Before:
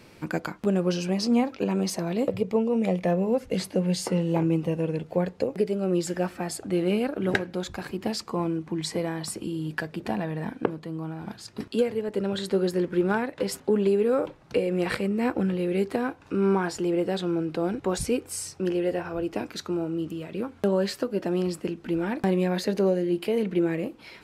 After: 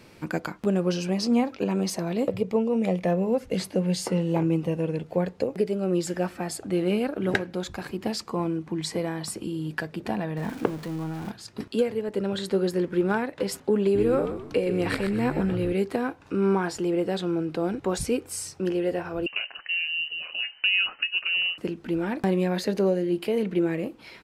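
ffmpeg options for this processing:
-filter_complex "[0:a]asettb=1/sr,asplit=3[a][b][c];[a]atrim=end=10.374[d];[b]atrim=start=10.37:end=11.31,asetpts=PTS-STARTPTS,afade=t=in:d=0.004:c=qsin,afade=t=out:st=0.936:d=0.004:c=qsin,aeval=exprs='val(0)+0.5*0.0141*sgn(val(0))':c=same[e];[c]atrim=start=11.306[f];[d][e]acrossfade=d=0.004:c1=hsin:c2=qsin[g];[g][f]acrossfade=d=0.004:c1=qsin:c2=hsin,asplit=3[h][i][j];[h]afade=t=out:st=13.94:d=0.02[k];[i]asplit=5[l][m][n][o][p];[m]adelay=124,afreqshift=-78,volume=-8dB[q];[n]adelay=248,afreqshift=-156,volume=-16.2dB[r];[o]adelay=372,afreqshift=-234,volume=-24.4dB[s];[p]adelay=496,afreqshift=-312,volume=-32.5dB[t];[l][q][r][s][t]amix=inputs=5:normalize=0,afade=t=in:st=13.94:d=0.02,afade=t=out:st=15.72:d=0.02[u];[j]afade=t=in:st=15.72:d=0.02[v];[k][u][v]amix=inputs=3:normalize=0,asettb=1/sr,asplit=3[w][x][y];[w]atrim=end=19.264[z];[x]atrim=start=19.26:end=21.58,asetpts=PTS-STARTPTS,afade=t=in:d=0.004:c=qsin,afade=t=out:st=2.316:d=0.004:c=qsin,lowpass=f=2.6k:t=q:w=0.5098,lowpass=f=2.6k:t=q:w=0.6013,lowpass=f=2.6k:t=q:w=0.9,lowpass=f=2.6k:t=q:w=2.563,afreqshift=-3100[aa];[y]atrim=start=21.576[ab];[z][aa]acrossfade=d=0.004:c1=hsin:c2=qsin[ac];[ac][ab]acrossfade=d=0.004:c1=qsin:c2=hsin"

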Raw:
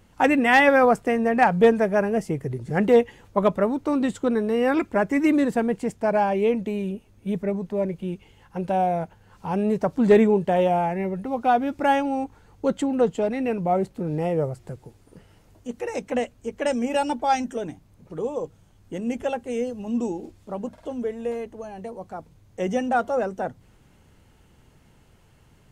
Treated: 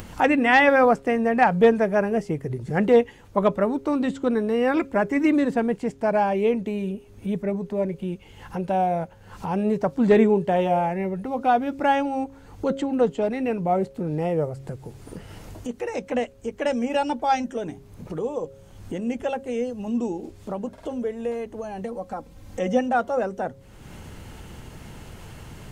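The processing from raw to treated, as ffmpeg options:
-filter_complex "[0:a]asettb=1/sr,asplit=3[a][b][c];[a]atrim=end=21.834[d];[b]atrim=start=21.83:end=22.81,asetpts=PTS-STARTPTS,afade=t=in:d=0.004:c=qsin,afade=t=out:st=0.976:d=0.004:c=qsin,aecho=1:1:3.8:0.65,atrim=end_sample=43218[e];[c]atrim=start=22.806[f];[d][e]acrossfade=d=0.004:c1=hsin:c2=qsin[g];[g][f]acrossfade=d=0.004:c1=qsin:c2=hsin,acrossover=split=6500[h][i];[i]acompressor=threshold=-58dB:ratio=4:attack=1:release=60[j];[h][j]amix=inputs=2:normalize=0,bandreject=f=136:t=h:w=4,bandreject=f=272:t=h:w=4,bandreject=f=408:t=h:w=4,bandreject=f=544:t=h:w=4,acompressor=mode=upward:threshold=-26dB:ratio=2.5"

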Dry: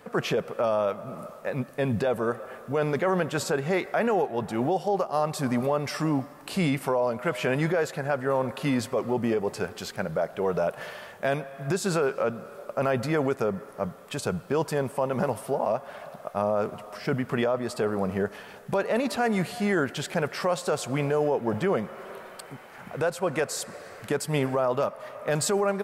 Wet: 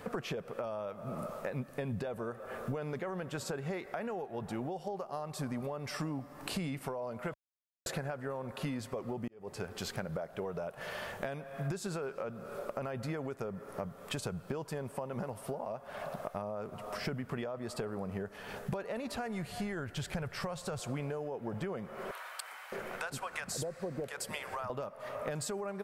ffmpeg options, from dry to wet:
-filter_complex "[0:a]asettb=1/sr,asplit=3[a][b][c];[a]atrim=end=18.774[d];[b]atrim=start=18.77:end=20.8,asetpts=PTS-STARTPTS,afade=t=in:d=0.004:c=qsin,afade=t=out:st=2.026:d=0.004:c=qsin,asubboost=boost=11.5:cutoff=110[e];[c]atrim=start=20.796[f];[d][e]acrossfade=d=0.004:c1=hsin:c2=qsin[g];[g][f]acrossfade=d=0.004:c1=qsin:c2=hsin,asettb=1/sr,asplit=3[h][i][j];[h]atrim=end=22.114[k];[i]atrim=start=22.11:end=24.7,asetpts=PTS-STARTPTS,afade=t=in:d=0.004:c=qsin,afade=t=out:st=2.586:d=0.004:c=qsin,acrossover=split=820[l][m];[l]adelay=610[n];[n][m]amix=inputs=2:normalize=0,atrim=end_sample=114219[o];[j]atrim=start=24.696[p];[k][o]acrossfade=d=0.004:c1=hsin:c2=qsin[q];[q][p]acrossfade=d=0.004:c1=qsin:c2=hsin,asplit=4[r][s][t][u];[r]atrim=end=7.34,asetpts=PTS-STARTPTS,afade=t=out:st=7.336:d=0.004:c=hsin[v];[s]atrim=start=7.34:end=7.86,asetpts=PTS-STARTPTS,volume=0[w];[t]atrim=start=7.86:end=9.28,asetpts=PTS-STARTPTS,afade=t=in:d=0.004:c=hsin,afade=t=out:st=1.416:d=0.004:c=hsin[x];[u]atrim=start=9.28,asetpts=PTS-STARTPTS,afade=t=in:d=0.9[y];[v][w][x][y]concat=n=4:v=0:a=1,acompressor=threshold=-38dB:ratio=16,lowshelf=f=85:g=11.5,volume=2.5dB"

